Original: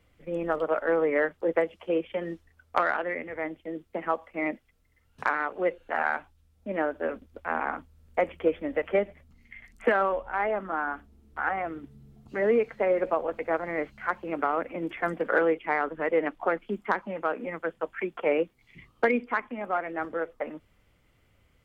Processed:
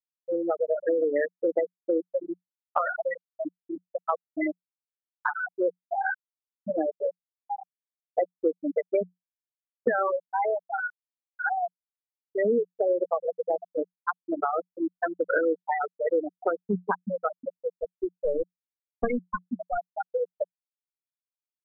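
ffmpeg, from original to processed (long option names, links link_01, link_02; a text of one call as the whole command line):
ffmpeg -i in.wav -filter_complex "[0:a]asettb=1/sr,asplit=3[link_01][link_02][link_03];[link_01]atrim=end=17.284[link_04];[link_02]atrim=start=17.28:end=19.9,asetpts=PTS-STARTPTS,afade=type=in:duration=0.004:curve=qsin,afade=type=out:start_time=2.616:duration=0.004:curve=qsin,aeval=exprs='clip(val(0),-1,0.0237)':channel_layout=same[link_05];[link_03]atrim=start=19.896[link_06];[link_04][link_05]acrossfade=duration=0.004:curve1=hsin:curve2=qsin[link_07];[link_07][link_06]acrossfade=duration=0.004:curve1=qsin:curve2=hsin,afftfilt=real='re*gte(hypot(re,im),0.224)':imag='im*gte(hypot(re,im),0.224)':win_size=1024:overlap=0.75,equalizer=frequency=180:width_type=o:width=0.26:gain=14,acompressor=threshold=-34dB:ratio=2.5,volume=8.5dB" out.wav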